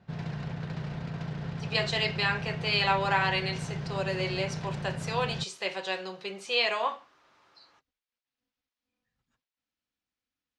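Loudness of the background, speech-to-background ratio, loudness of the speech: -36.5 LUFS, 6.5 dB, -30.0 LUFS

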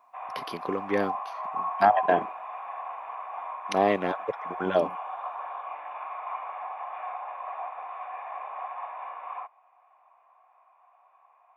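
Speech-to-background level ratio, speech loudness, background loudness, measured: 8.5 dB, -27.5 LUFS, -36.0 LUFS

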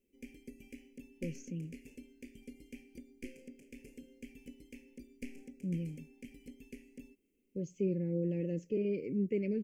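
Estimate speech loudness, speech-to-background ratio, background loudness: -37.0 LUFS, 15.5 dB, -52.5 LUFS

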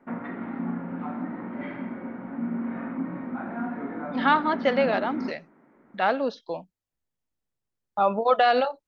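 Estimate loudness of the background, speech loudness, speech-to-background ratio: -33.0 LUFS, -24.0 LUFS, 9.0 dB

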